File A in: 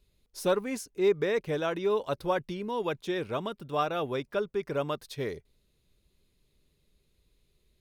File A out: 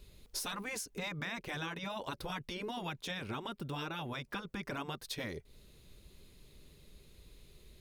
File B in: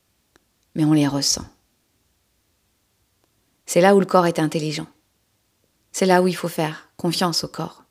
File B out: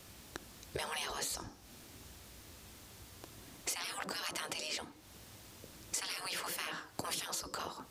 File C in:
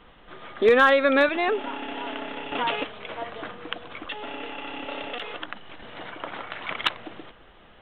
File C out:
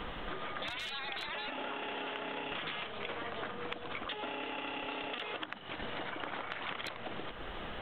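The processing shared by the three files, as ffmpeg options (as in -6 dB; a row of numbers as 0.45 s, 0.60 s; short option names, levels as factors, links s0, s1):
-af "afftfilt=real='re*lt(hypot(re,im),0.112)':imag='im*lt(hypot(re,im),0.112)':win_size=1024:overlap=0.75,acompressor=threshold=0.00355:ratio=10,volume=3.98"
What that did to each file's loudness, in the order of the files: -9.5 LU, -19.5 LU, -14.0 LU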